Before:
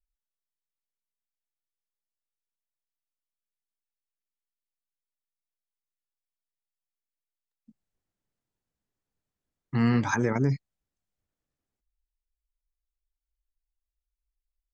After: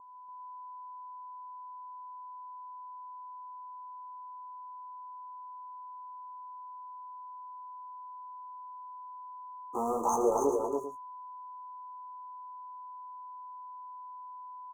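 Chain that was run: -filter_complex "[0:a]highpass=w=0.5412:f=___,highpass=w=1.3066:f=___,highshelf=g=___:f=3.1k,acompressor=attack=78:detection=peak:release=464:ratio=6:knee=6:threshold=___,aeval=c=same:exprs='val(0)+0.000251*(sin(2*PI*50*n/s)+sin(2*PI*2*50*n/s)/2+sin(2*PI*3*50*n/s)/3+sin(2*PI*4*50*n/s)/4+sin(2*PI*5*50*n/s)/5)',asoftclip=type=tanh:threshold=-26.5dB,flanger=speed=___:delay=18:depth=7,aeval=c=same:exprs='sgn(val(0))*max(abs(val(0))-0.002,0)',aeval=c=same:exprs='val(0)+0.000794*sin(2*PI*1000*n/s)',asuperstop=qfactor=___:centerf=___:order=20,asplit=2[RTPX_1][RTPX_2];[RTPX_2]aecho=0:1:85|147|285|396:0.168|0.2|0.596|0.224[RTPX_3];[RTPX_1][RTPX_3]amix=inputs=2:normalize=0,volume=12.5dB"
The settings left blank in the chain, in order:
420, 420, 2.5, -31dB, 0.5, 0.54, 2800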